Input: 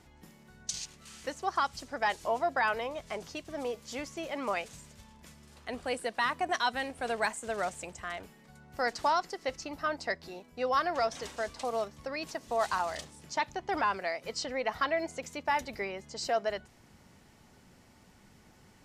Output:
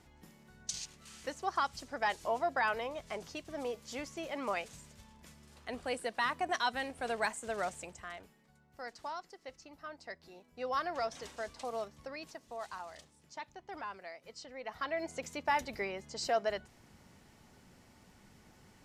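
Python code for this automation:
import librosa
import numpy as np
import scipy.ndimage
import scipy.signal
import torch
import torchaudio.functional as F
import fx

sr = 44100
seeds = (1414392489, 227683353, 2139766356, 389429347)

y = fx.gain(x, sr, db=fx.line((7.73, -3.0), (8.75, -14.0), (9.97, -14.0), (10.74, -6.0), (12.02, -6.0), (12.61, -13.5), (14.52, -13.5), (15.18, -1.5)))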